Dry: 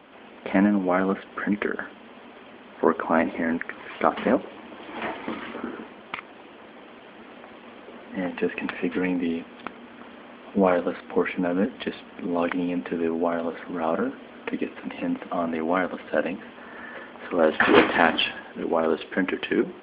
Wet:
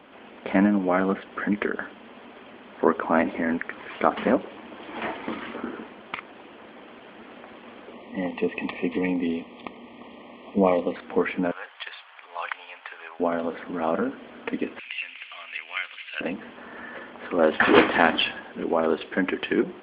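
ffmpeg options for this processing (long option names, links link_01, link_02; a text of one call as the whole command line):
ffmpeg -i in.wav -filter_complex "[0:a]asettb=1/sr,asplit=3[link_01][link_02][link_03];[link_01]atrim=end=7.934[link_04];[link_02]atrim=start=7.93:end=10.96,asetpts=PTS-STARTPTS,afade=type=in:duration=0.004:curve=qsin,afade=type=out:start_time=3.026:duration=0.004:curve=qsin,asuperstop=centerf=1500:order=12:qfactor=2.5[link_05];[link_03]atrim=start=10.956[link_06];[link_04][link_05]acrossfade=duration=0.004:curve1=hsin:curve2=qsin[link_07];[link_07][link_06]acrossfade=duration=0.004:curve1=qsin:curve2=hsin,asettb=1/sr,asplit=3[link_08][link_09][link_10];[link_08]atrim=end=11.514[link_11];[link_09]atrim=start=11.51:end=13.2,asetpts=PTS-STARTPTS,afade=type=in:duration=0.004:curve=qsin,afade=type=out:start_time=1.686:duration=0.004:curve=qsin,highpass=frequency=860:width=0.5412,highpass=frequency=860:width=1.3066[link_12];[link_10]atrim=start=13.196[link_13];[link_11][link_12]acrossfade=duration=0.004:curve1=hsin:curve2=qsin[link_14];[link_14][link_13]acrossfade=duration=0.004:curve1=qsin:curve2=hsin,asettb=1/sr,asplit=3[link_15][link_16][link_17];[link_15]atrim=end=14.794[link_18];[link_16]atrim=start=14.79:end=16.21,asetpts=PTS-STARTPTS,afade=type=in:duration=0.004:curve=qsin,afade=type=out:start_time=1.416:duration=0.004:curve=qsin,highpass=frequency=2500:width_type=q:width=3.8[link_19];[link_17]atrim=start=16.206[link_20];[link_18][link_19]acrossfade=duration=0.004:curve1=hsin:curve2=qsin[link_21];[link_21][link_20]acrossfade=duration=0.004:curve1=qsin:curve2=hsin" out.wav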